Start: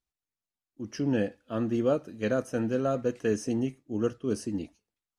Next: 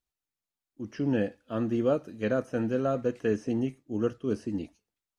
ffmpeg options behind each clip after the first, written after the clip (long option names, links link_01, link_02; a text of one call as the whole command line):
ffmpeg -i in.wav -filter_complex "[0:a]acrossover=split=3700[link_01][link_02];[link_02]acompressor=threshold=-59dB:ratio=4:attack=1:release=60[link_03];[link_01][link_03]amix=inputs=2:normalize=0" out.wav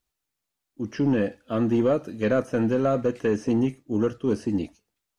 ffmpeg -i in.wav -af "alimiter=limit=-18.5dB:level=0:latency=1:release=98,asoftclip=type=tanh:threshold=-20dB,volume=7.5dB" out.wav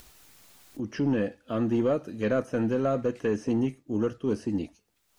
ffmpeg -i in.wav -af "acompressor=mode=upward:threshold=-26dB:ratio=2.5,volume=-3.5dB" out.wav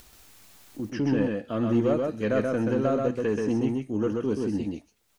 ffmpeg -i in.wav -af "aecho=1:1:130:0.708" out.wav